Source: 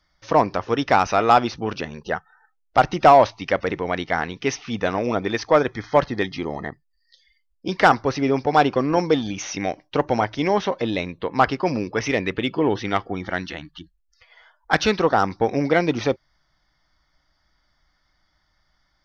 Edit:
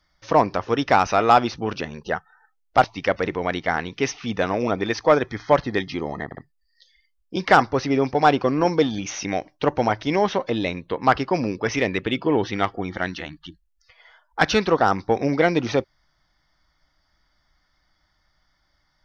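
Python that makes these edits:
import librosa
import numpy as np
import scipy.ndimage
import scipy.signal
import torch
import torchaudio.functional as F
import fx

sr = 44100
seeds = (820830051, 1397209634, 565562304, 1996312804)

y = fx.edit(x, sr, fx.cut(start_s=2.84, length_s=0.44),
    fx.stutter(start_s=6.69, slice_s=0.06, count=3), tone=tone)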